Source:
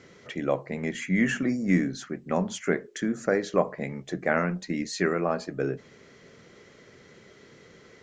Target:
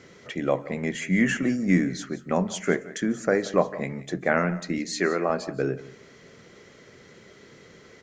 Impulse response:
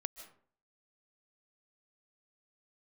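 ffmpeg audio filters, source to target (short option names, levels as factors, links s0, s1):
-filter_complex "[0:a]asettb=1/sr,asplit=3[s0][s1][s2];[s0]atrim=end=4.784[s3];[s1]atrim=start=4.78:end=5.3,asetpts=PTS-STARTPTS,afade=t=in:d=0.004:c=qsin,afade=t=out:st=0.516:d=0.004:c=qsin,highpass=230[s4];[s2]atrim=start=5.296[s5];[s3][s4]acrossfade=d=0.004:c1=hsin:c2=qsin[s6];[s6][s5]acrossfade=d=0.004:c1=qsin:c2=hsin,aecho=1:1:177:0.126,asplit=2[s7][s8];[1:a]atrim=start_sample=2205,highshelf=f=5200:g=9[s9];[s8][s9]afir=irnorm=-1:irlink=0,volume=0.335[s10];[s7][s10]amix=inputs=2:normalize=0"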